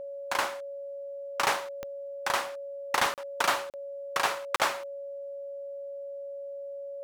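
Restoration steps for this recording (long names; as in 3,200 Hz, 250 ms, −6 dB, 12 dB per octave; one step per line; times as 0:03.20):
click removal
notch filter 560 Hz, Q 30
repair the gap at 0:03.14/0:03.70/0:04.56, 38 ms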